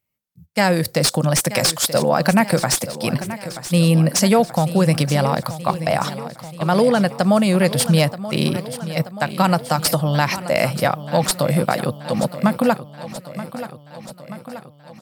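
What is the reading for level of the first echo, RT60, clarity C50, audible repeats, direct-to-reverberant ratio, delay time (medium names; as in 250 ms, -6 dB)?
-13.5 dB, no reverb, no reverb, 5, no reverb, 930 ms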